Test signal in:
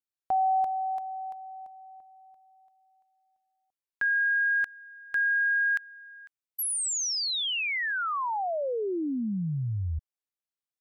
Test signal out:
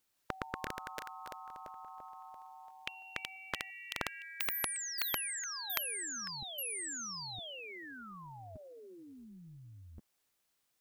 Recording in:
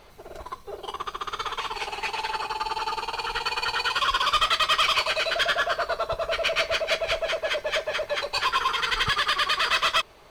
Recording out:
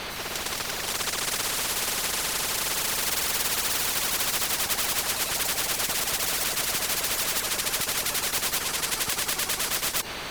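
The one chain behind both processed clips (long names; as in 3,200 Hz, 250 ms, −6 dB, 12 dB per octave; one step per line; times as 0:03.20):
delay with pitch and tempo change per echo 163 ms, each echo +3 semitones, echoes 3
every bin compressed towards the loudest bin 10 to 1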